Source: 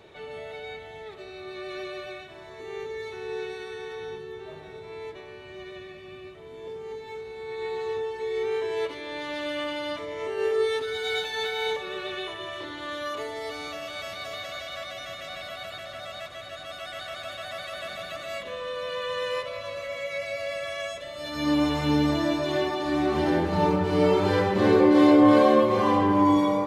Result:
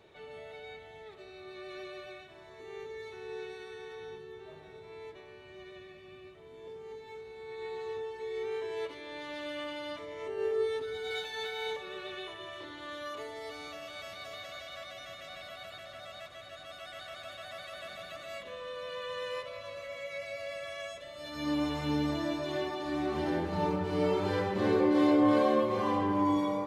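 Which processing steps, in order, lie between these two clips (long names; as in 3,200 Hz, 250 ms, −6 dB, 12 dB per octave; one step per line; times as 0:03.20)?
0:10.28–0:11.11: tilt shelving filter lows +4 dB, about 770 Hz
level −8 dB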